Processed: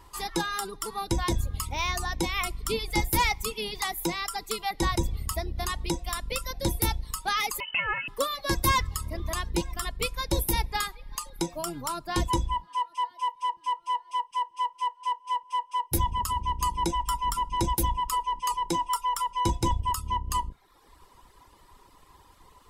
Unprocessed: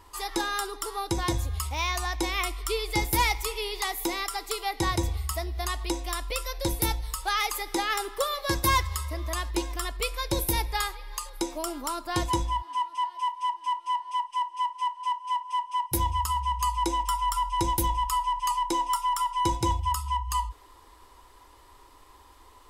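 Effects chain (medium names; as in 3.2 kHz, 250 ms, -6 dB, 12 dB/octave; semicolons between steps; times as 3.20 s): octave divider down 1 oct, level -1 dB; reverb removal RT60 0.85 s; 7.60–8.08 s: frequency inversion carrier 3 kHz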